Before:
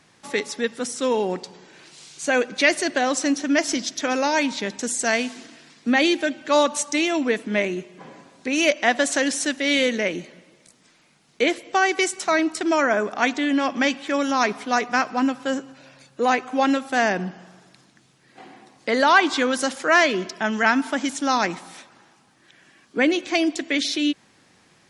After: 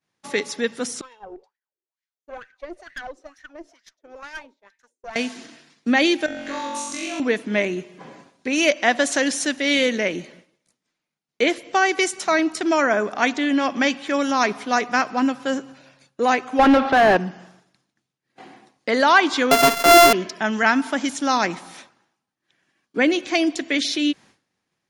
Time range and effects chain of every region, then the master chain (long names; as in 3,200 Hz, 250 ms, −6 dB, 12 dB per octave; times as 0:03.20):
0:01.01–0:05.16: RIAA equalisation recording + LFO wah 2.2 Hz 350–1,900 Hz, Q 7 + tube saturation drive 29 dB, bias 0.7
0:06.26–0:07.20: downward compressor 8 to 1, threshold −32 dBFS + flutter between parallel walls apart 3.7 metres, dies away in 1.1 s
0:16.59–0:17.17: low-pass filter 4,300 Hz 24 dB per octave + mid-hump overdrive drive 27 dB, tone 1,100 Hz, clips at −6 dBFS
0:19.51–0:20.13: samples sorted by size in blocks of 64 samples + high-pass filter 300 Hz 6 dB per octave + leveller curve on the samples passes 3
whole clip: notch filter 7,900 Hz, Q 12; downward expander −43 dBFS; level +1 dB